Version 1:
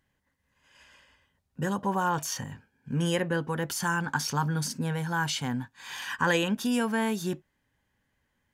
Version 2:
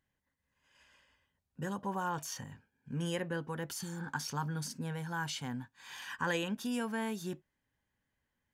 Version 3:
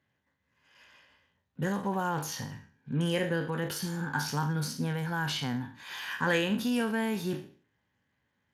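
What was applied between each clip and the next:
spectral replace 3.84–4.05 s, 530–4600 Hz both; trim -8.5 dB
spectral sustain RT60 0.45 s; dynamic bell 1.1 kHz, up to -5 dB, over -47 dBFS, Q 1.9; trim +6 dB; Speex 28 kbps 32 kHz

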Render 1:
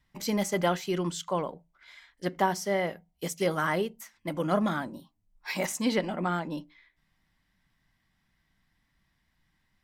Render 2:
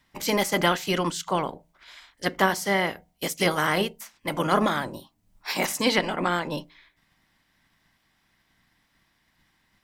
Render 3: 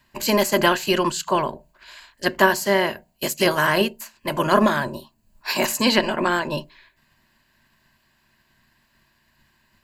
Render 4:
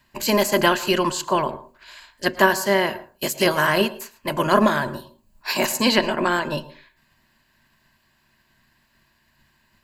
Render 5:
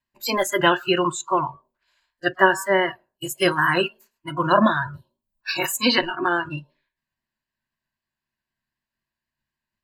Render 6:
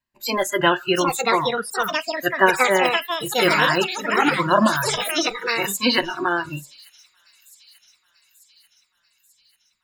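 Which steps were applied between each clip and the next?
spectral peaks clipped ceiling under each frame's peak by 14 dB; trim +4.5 dB
rippled EQ curve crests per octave 1.4, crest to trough 9 dB; trim +3.5 dB
reverberation RT60 0.30 s, pre-delay 102 ms, DRR 16.5 dB
vibrato 3.9 Hz 33 cents; spectral noise reduction 25 dB; trim +1 dB
ever faster or slower copies 792 ms, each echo +5 st, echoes 3; feedback echo behind a high-pass 889 ms, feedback 59%, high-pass 5.3 kHz, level -17.5 dB

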